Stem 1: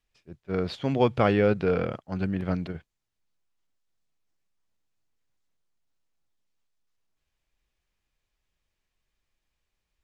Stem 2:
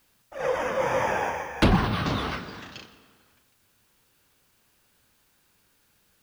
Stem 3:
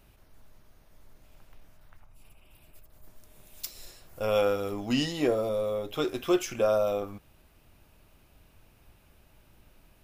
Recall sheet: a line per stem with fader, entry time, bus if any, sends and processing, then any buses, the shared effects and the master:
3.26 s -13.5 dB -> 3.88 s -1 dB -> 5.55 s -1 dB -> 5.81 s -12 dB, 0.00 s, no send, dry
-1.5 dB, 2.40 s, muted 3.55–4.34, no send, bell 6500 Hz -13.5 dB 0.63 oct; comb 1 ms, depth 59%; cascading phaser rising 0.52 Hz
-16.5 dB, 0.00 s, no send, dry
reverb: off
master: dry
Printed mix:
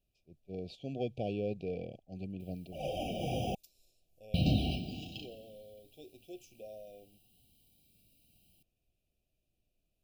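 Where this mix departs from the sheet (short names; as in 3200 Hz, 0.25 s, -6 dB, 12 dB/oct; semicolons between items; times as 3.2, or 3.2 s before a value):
stem 3 -16.5 dB -> -23.5 dB; master: extra brick-wall FIR band-stop 790–2300 Hz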